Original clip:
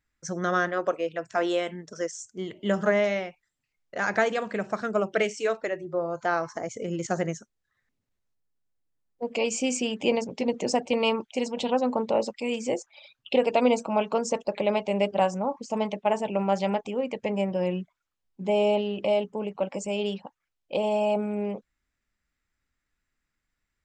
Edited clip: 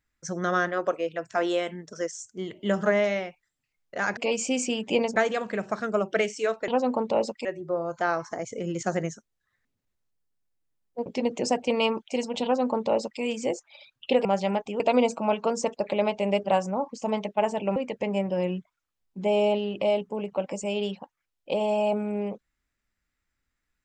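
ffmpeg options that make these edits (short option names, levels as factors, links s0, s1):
-filter_complex "[0:a]asplit=9[s0][s1][s2][s3][s4][s5][s6][s7][s8];[s0]atrim=end=4.172[s9];[s1]atrim=start=9.298:end=10.292[s10];[s2]atrim=start=4.168:end=5.692[s11];[s3]atrim=start=11.668:end=12.442[s12];[s4]atrim=start=5.688:end=9.302[s13];[s5]atrim=start=10.288:end=13.482[s14];[s6]atrim=start=16.438:end=16.992[s15];[s7]atrim=start=13.478:end=16.442[s16];[s8]atrim=start=16.988[s17];[s9][s10]acrossfade=d=0.004:c1=hsin:c2=hsin[s18];[s18][s11]acrossfade=d=0.004:c1=hsin:c2=hsin[s19];[s19][s12]acrossfade=d=0.004:c1=hsin:c2=hsin[s20];[s20][s13]acrossfade=d=0.004:c1=hsin:c2=hsin[s21];[s21][s14]acrossfade=d=0.004:c1=hsin:c2=hsin[s22];[s22][s15]acrossfade=d=0.004:c1=hsin:c2=hsin[s23];[s23][s16]acrossfade=d=0.004:c1=hsin:c2=hsin[s24];[s24][s17]acrossfade=d=0.004:c1=hsin:c2=hsin"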